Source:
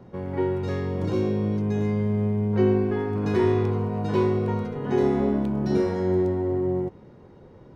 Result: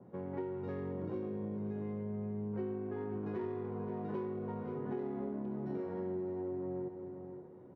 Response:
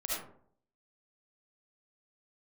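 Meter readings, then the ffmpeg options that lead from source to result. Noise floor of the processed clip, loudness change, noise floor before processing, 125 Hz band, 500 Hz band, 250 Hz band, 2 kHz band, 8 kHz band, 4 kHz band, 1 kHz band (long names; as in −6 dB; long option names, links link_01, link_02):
−53 dBFS, −15.5 dB, −49 dBFS, −18.0 dB, −14.5 dB, −14.5 dB, −18.0 dB, can't be measured, below −25 dB, −14.5 dB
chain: -filter_complex "[0:a]highpass=140,adynamicsmooth=sensitivity=1.5:basefreq=1600,asplit=2[link_01][link_02];[link_02]aecho=0:1:528|1056|1584:0.211|0.055|0.0143[link_03];[link_01][link_03]amix=inputs=2:normalize=0,acompressor=threshold=-29dB:ratio=6,adynamicequalizer=threshold=0.00158:dfrequency=2300:dqfactor=0.7:tfrequency=2300:tqfactor=0.7:attack=5:release=100:ratio=0.375:range=3:mode=cutabove:tftype=highshelf,volume=-7dB"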